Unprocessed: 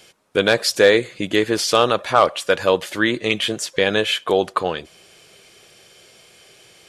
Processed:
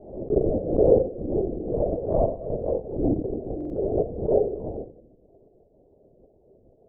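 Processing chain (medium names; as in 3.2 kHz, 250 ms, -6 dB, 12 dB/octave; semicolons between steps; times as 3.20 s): spectrogram pixelated in time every 50 ms; dynamic bell 450 Hz, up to -5 dB, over -26 dBFS, Q 0.83; in parallel at -6 dB: decimation with a swept rate 29×, swing 100% 2 Hz; on the sum: rotary cabinet horn 0.75 Hz, later 6.3 Hz, at 2.11 s; AM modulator 260 Hz, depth 30%; reverberation RT60 0.65 s, pre-delay 5 ms, DRR -6.5 dB; transient shaper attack +8 dB, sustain -7 dB; steep low-pass 680 Hz 48 dB/octave; bass shelf 260 Hz -12 dB; LPC vocoder at 8 kHz whisper; buffer glitch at 3.56 s, samples 2048, times 2; swell ahead of each attack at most 84 dB/s; trim -4.5 dB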